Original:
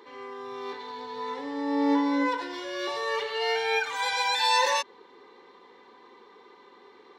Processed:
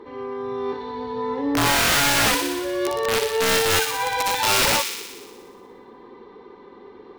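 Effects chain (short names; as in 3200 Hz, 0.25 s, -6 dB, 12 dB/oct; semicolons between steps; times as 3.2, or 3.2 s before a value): tilt -4.5 dB/oct; wrapped overs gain 19.5 dB; on a send: thin delay 60 ms, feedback 71%, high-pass 2500 Hz, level -4 dB; on the sum: gain +5 dB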